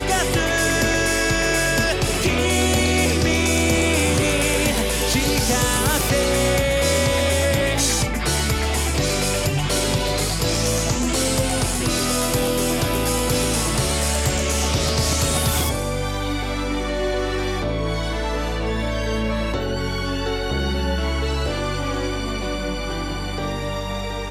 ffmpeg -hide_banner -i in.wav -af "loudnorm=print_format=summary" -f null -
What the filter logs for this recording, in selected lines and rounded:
Input Integrated:    -20.9 LUFS
Input True Peak:      -7.5 dBTP
Input LRA:             7.2 LU
Input Threshold:     -30.9 LUFS